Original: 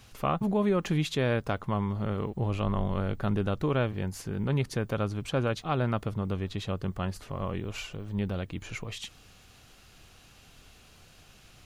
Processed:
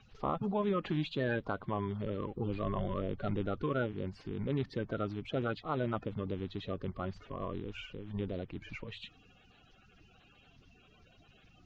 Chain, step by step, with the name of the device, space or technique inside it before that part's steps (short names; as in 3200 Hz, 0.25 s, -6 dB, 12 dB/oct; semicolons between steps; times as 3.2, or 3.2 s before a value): clip after many re-uploads (LPF 4200 Hz 24 dB/oct; bin magnitudes rounded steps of 30 dB); gain -5.5 dB